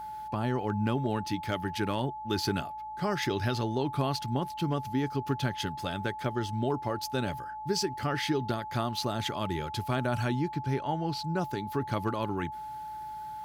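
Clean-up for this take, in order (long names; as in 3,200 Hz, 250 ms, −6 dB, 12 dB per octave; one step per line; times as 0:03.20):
hum removal 56.8 Hz, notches 5
notch filter 860 Hz, Q 30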